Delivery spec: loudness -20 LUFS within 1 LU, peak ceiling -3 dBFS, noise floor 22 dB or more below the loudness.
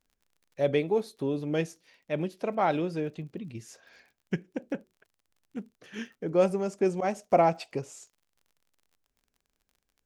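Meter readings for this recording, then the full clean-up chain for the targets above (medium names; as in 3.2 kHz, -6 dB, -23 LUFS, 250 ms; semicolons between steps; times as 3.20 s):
tick rate 37 per s; loudness -29.5 LUFS; peak level -10.0 dBFS; loudness target -20.0 LUFS
-> de-click; trim +9.5 dB; peak limiter -3 dBFS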